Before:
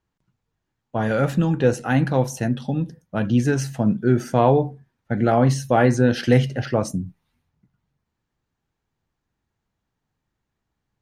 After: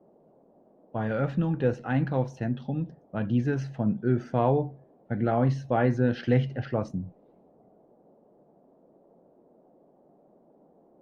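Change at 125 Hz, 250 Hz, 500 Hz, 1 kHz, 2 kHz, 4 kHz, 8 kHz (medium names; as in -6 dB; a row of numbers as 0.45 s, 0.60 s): -6.0 dB, -7.0 dB, -7.5 dB, -8.0 dB, -9.0 dB, -13.0 dB, under -20 dB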